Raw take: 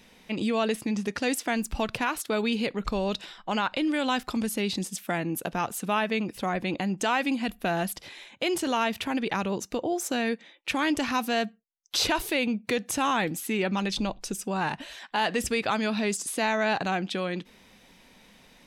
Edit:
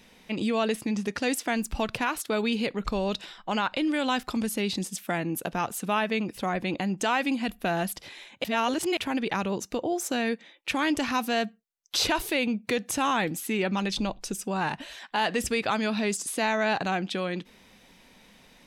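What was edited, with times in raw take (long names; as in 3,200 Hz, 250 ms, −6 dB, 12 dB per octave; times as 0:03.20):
0:08.44–0:08.97: reverse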